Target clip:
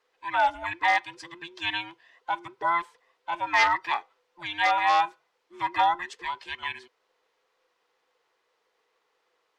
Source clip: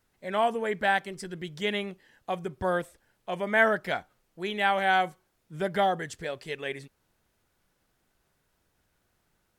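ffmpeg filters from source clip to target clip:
ffmpeg -i in.wav -filter_complex "[0:a]afftfilt=real='real(if(between(b,1,1008),(2*floor((b-1)/24)+1)*24-b,b),0)':imag='imag(if(between(b,1,1008),(2*floor((b-1)/24)+1)*24-b,b),0)*if(between(b,1,1008),-1,1)':win_size=2048:overlap=0.75,aeval=exprs='0.15*(abs(mod(val(0)/0.15+3,4)-2)-1)':channel_layout=same,acrossover=split=470 5700:gain=0.0631 1 0.1[link_01][link_02][link_03];[link_01][link_02][link_03]amix=inputs=3:normalize=0,volume=3.5dB" out.wav

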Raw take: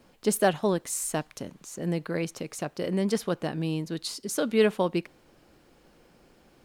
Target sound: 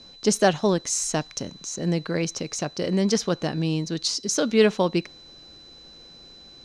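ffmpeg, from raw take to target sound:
ffmpeg -i in.wav -af "aeval=exprs='val(0)+0.00224*sin(2*PI*4000*n/s)':channel_layout=same,lowpass=frequency=6000:width_type=q:width=3.8,lowshelf=frequency=170:gain=4,volume=3dB" out.wav

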